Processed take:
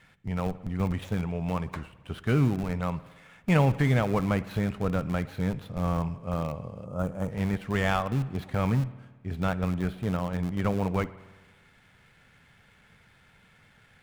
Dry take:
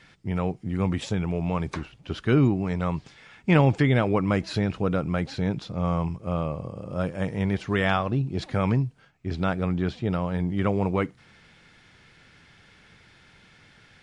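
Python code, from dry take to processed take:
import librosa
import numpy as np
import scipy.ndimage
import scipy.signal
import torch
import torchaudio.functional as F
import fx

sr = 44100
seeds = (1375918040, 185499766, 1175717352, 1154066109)

p1 = scipy.ndimage.median_filter(x, 9, mode='constant')
p2 = fx.peak_eq(p1, sr, hz=330.0, db=-8.0, octaves=0.48)
p3 = fx.schmitt(p2, sr, flips_db=-23.0)
p4 = p2 + (p3 * librosa.db_to_amplitude(-6.5))
p5 = fx.rev_spring(p4, sr, rt60_s=1.3, pass_ms=(54,), chirp_ms=45, drr_db=16.0)
p6 = fx.spec_box(p5, sr, start_s=6.85, length_s=0.46, low_hz=1500.0, high_hz=5800.0, gain_db=-10)
y = p6 * librosa.db_to_amplitude(-3.0)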